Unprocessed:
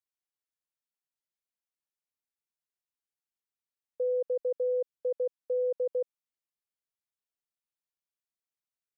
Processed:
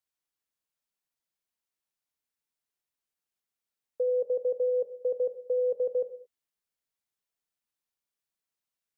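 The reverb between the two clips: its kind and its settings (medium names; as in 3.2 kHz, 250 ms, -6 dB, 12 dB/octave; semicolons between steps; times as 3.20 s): gated-style reverb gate 250 ms falling, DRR 10.5 dB; trim +3 dB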